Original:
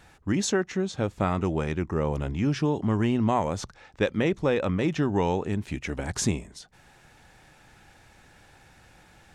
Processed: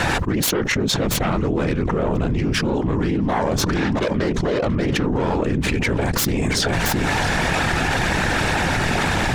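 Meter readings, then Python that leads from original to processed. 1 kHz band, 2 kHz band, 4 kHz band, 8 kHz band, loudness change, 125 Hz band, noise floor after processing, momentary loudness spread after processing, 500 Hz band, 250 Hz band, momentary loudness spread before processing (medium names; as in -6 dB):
+9.0 dB, +15.0 dB, +14.5 dB, +10.0 dB, +6.5 dB, +7.5 dB, -23 dBFS, 2 LU, +6.0 dB, +6.5 dB, 7 LU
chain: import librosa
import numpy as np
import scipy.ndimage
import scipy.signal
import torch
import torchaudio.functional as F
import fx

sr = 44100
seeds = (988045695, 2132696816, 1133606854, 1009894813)

p1 = fx.self_delay(x, sr, depth_ms=0.18)
p2 = fx.whisperise(p1, sr, seeds[0])
p3 = fx.high_shelf(p2, sr, hz=7800.0, db=-10.5)
p4 = p3 + fx.echo_single(p3, sr, ms=674, db=-22.5, dry=0)
y = fx.env_flatten(p4, sr, amount_pct=100)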